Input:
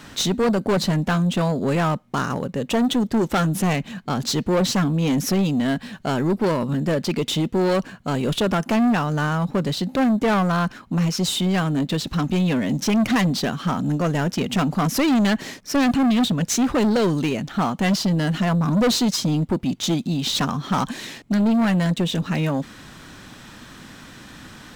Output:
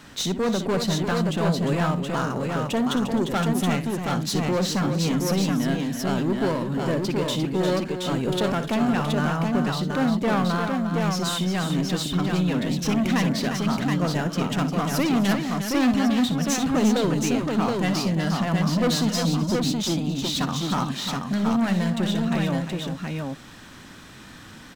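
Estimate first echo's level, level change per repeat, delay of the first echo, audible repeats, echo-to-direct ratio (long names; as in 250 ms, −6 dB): −12.0 dB, repeats not evenly spaced, 61 ms, 4, −1.5 dB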